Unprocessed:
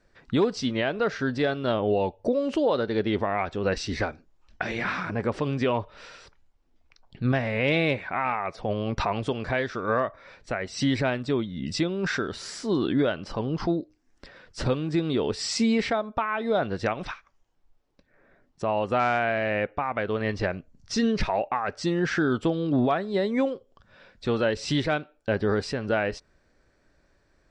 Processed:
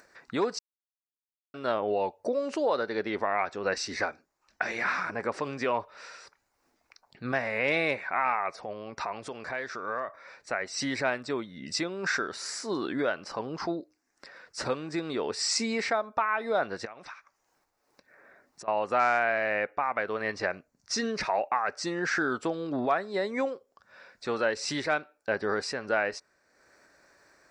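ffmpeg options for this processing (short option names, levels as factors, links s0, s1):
-filter_complex "[0:a]asplit=3[s0][s1][s2];[s0]afade=t=out:st=8.59:d=0.02[s3];[s1]acompressor=threshold=0.0251:ratio=2:attack=3.2:release=140:knee=1:detection=peak,afade=t=in:st=8.59:d=0.02,afade=t=out:st=10.07:d=0.02[s4];[s2]afade=t=in:st=10.07:d=0.02[s5];[s3][s4][s5]amix=inputs=3:normalize=0,asettb=1/sr,asplit=3[s6][s7][s8];[s6]atrim=end=16.854[s9];[s7]atrim=start=16.85:end=18.68,asetpts=PTS-STARTPTS,afade=t=in:d=0.004:c=qsin,afade=t=out:st=1.826:d=0.004:c=qsin,acompressor=threshold=0.0126:ratio=8:attack=3.2:release=140:knee=1:detection=peak[s10];[s8]atrim=start=18.676[s11];[s9][s10]acrossfade=d=0.004:c1=hsin:c2=qsin[s12];[s12][s11]acrossfade=d=0.004:c1=qsin:c2=hsin,asplit=3[s13][s14][s15];[s13]atrim=end=0.59,asetpts=PTS-STARTPTS,afade=t=out:st=0.586:d=0.004:c=hsin[s16];[s14]atrim=start=0.59:end=1.54,asetpts=PTS-STARTPTS,volume=0[s17];[s15]atrim=start=1.54,asetpts=PTS-STARTPTS,afade=t=in:d=0.004:c=hsin[s18];[s16][s17][s18]concat=n=3:v=0:a=1,acompressor=mode=upward:threshold=0.00501:ratio=2.5,highpass=f=1100:p=1,equalizer=f=3200:t=o:w=0.55:g=-13,volume=1.58"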